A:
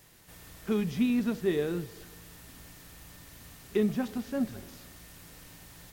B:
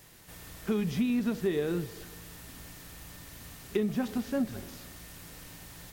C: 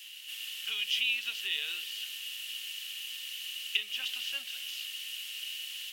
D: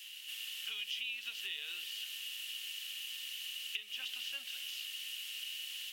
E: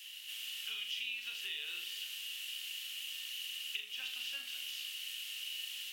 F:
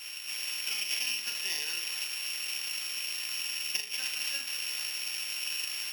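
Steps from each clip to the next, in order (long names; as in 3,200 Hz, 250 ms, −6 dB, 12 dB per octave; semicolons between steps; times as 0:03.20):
downward compressor, threshold −28 dBFS, peak gain reduction 6.5 dB; level +3 dB
high-pass with resonance 2,900 Hz, resonance Q 14; level +3 dB
downward compressor 3 to 1, threshold −37 dBFS, peak gain reduction 10.5 dB; level −2 dB
flutter between parallel walls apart 6.9 metres, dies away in 0.4 s; level −1 dB
samples sorted by size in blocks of 8 samples; level +8 dB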